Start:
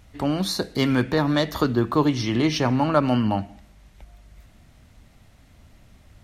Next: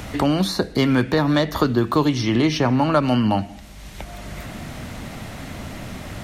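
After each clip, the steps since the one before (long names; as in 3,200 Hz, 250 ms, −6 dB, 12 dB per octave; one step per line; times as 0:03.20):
multiband upward and downward compressor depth 70%
level +3 dB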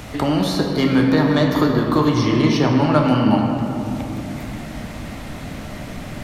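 rectangular room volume 210 cubic metres, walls hard, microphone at 0.47 metres
level −1.5 dB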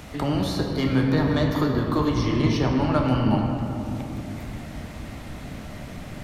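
sub-octave generator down 1 octave, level −3 dB
level −6.5 dB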